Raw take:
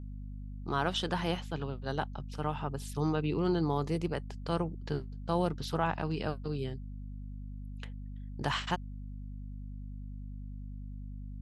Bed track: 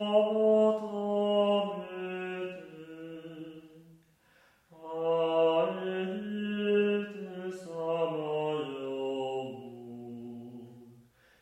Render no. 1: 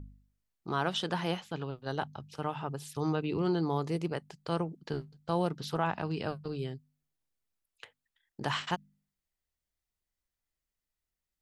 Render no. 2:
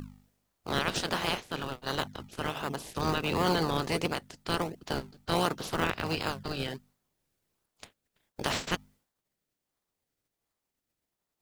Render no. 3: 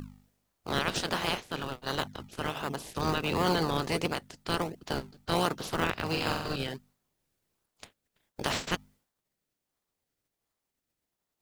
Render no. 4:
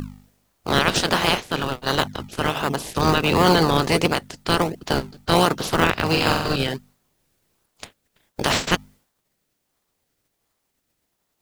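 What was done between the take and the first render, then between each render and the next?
de-hum 50 Hz, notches 5
spectral peaks clipped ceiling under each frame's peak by 22 dB; in parallel at -4 dB: decimation with a swept rate 29×, swing 100% 1.4 Hz
6.09–6.56 s: flutter echo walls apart 7.9 m, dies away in 0.79 s
trim +11 dB; peak limiter -2 dBFS, peak gain reduction 2.5 dB

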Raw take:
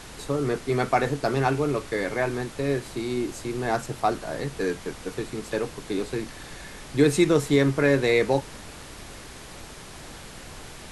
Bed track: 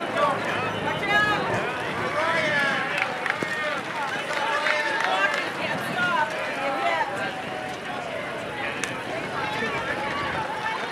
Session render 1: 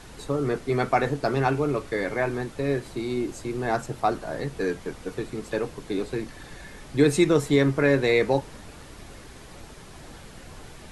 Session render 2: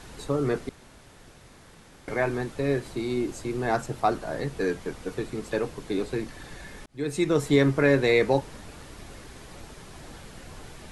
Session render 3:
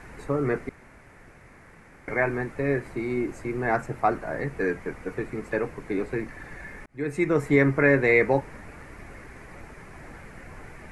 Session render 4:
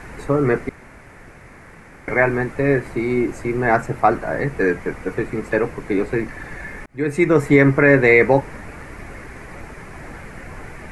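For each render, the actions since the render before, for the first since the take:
noise reduction 6 dB, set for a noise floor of -42 dBFS
0.69–2.08 s: room tone; 6.86–7.52 s: fade in
resonant high shelf 2.7 kHz -8 dB, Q 3
trim +8 dB; peak limiter -2 dBFS, peak gain reduction 2.5 dB

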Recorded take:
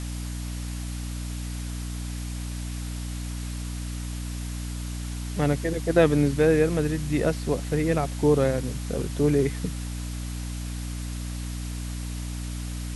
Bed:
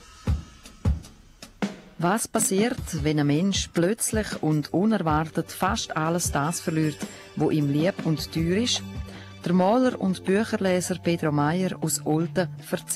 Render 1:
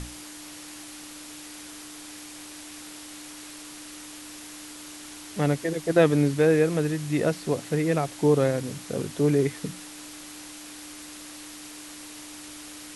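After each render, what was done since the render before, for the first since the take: hum notches 60/120/180/240 Hz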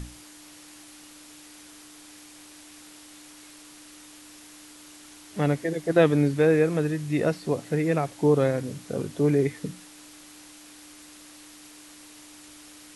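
noise print and reduce 6 dB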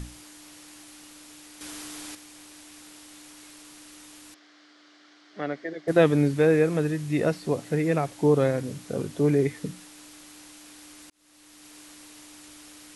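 1.61–2.15 s: gain +8.5 dB; 4.34–5.88 s: cabinet simulation 400–4300 Hz, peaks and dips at 480 Hz -6 dB, 920 Hz -10 dB, 2.6 kHz -10 dB, 3.7 kHz -4 dB; 11.10–11.77 s: fade in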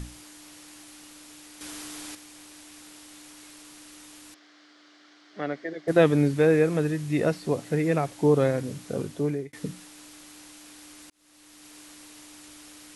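8.84–9.53 s: fade out equal-power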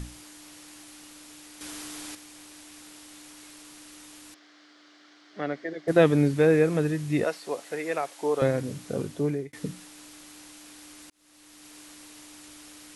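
7.24–8.42 s: high-pass 540 Hz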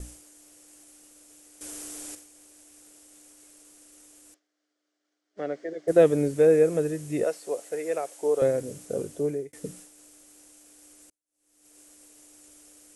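expander -42 dBFS; graphic EQ 125/250/500/1000/2000/4000/8000 Hz -7/-5/+6/-8/-5/-9/+6 dB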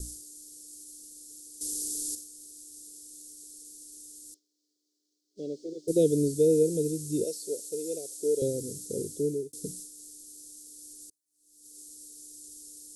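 elliptic band-stop 420–4200 Hz, stop band 60 dB; treble shelf 2.3 kHz +8 dB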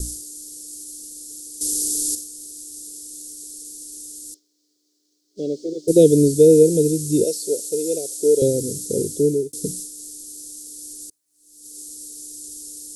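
trim +11 dB

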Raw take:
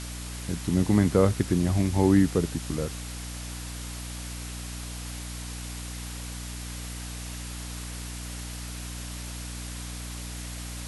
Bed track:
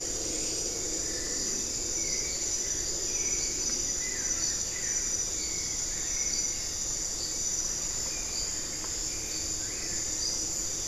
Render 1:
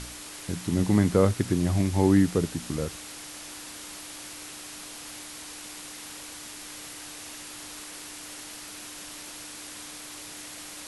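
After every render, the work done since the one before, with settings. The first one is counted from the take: de-hum 60 Hz, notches 4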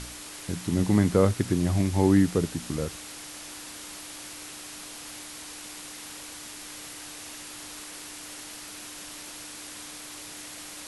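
no audible change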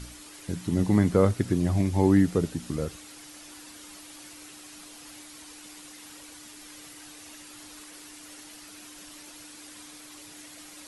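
noise reduction 8 dB, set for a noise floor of -42 dBFS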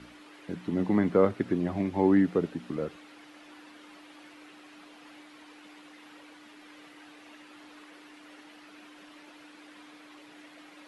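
three-band isolator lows -19 dB, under 180 Hz, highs -22 dB, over 3.3 kHz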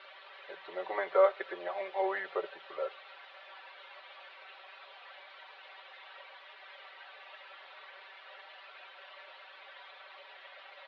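elliptic band-pass 530–3900 Hz, stop band 40 dB; comb 5.2 ms, depth 93%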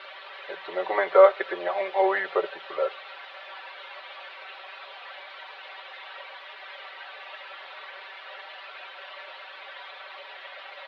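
trim +9.5 dB

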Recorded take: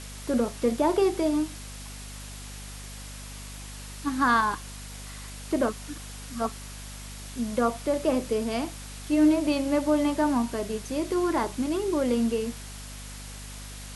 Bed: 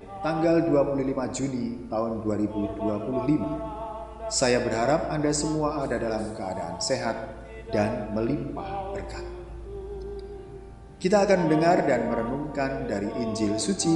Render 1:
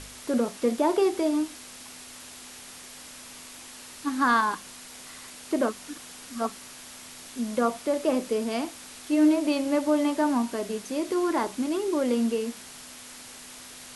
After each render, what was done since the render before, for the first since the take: de-hum 50 Hz, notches 4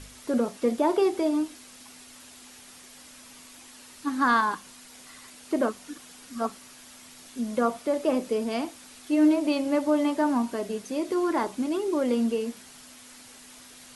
noise reduction 6 dB, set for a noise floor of -45 dBFS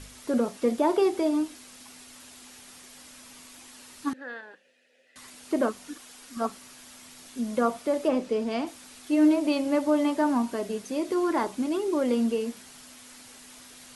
4.13–5.16 s: vowel filter e; 5.95–6.37 s: peaking EQ 130 Hz -9 dB 1.8 oct; 8.08–8.67 s: distance through air 60 m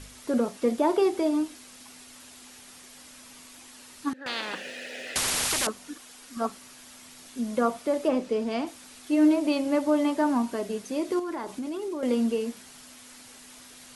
4.26–5.67 s: spectrum-flattening compressor 10:1; 11.19–12.03 s: compression 10:1, threshold -29 dBFS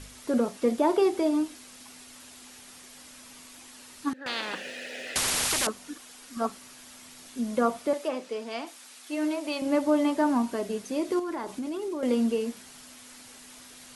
7.93–9.62 s: high-pass 830 Hz 6 dB/octave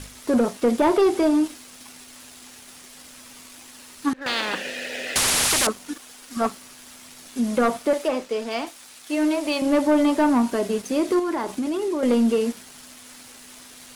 waveshaping leveller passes 2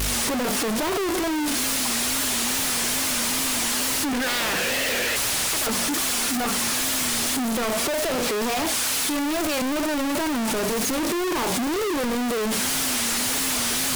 one-bit comparator; wow and flutter 110 cents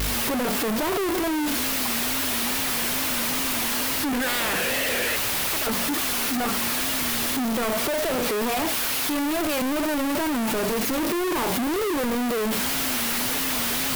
self-modulated delay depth 0.051 ms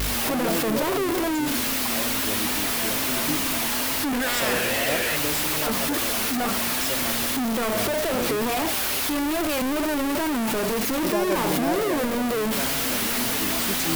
add bed -7 dB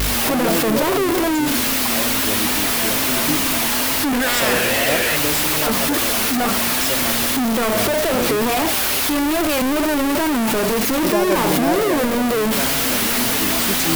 trim +6 dB

